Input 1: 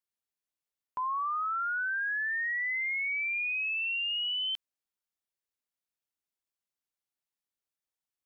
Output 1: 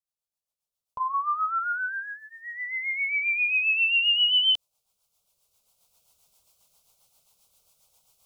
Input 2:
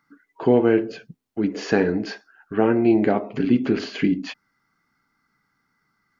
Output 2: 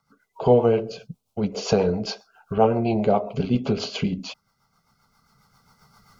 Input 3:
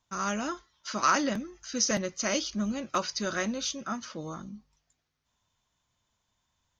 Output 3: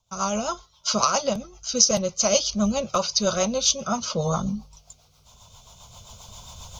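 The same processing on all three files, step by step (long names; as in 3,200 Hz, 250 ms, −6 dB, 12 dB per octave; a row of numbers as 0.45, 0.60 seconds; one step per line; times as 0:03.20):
camcorder AGC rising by 8.7 dB per second
rotating-speaker cabinet horn 7.5 Hz
phaser with its sweep stopped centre 740 Hz, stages 4
loudness normalisation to −23 LKFS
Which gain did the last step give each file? +1.5, +7.5, +9.5 decibels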